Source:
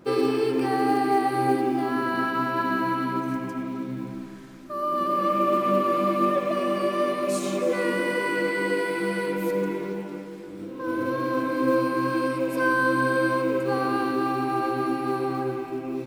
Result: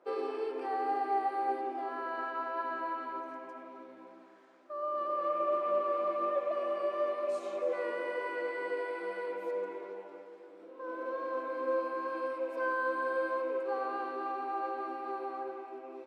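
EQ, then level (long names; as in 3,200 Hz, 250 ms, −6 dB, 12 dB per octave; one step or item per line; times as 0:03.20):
four-pole ladder high-pass 440 Hz, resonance 30%
high-frequency loss of the air 51 metres
high-shelf EQ 2,100 Hz −11.5 dB
−1.0 dB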